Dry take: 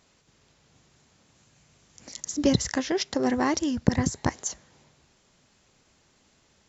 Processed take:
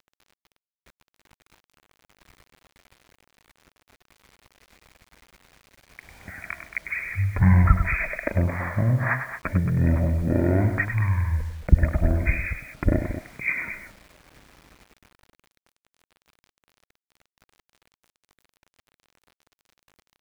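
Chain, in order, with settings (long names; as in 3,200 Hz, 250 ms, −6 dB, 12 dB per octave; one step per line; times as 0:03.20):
ambience of single reflections 33 ms −8.5 dB, 74 ms −11 dB
change of speed 0.331×
bit reduction 9 bits
level +3 dB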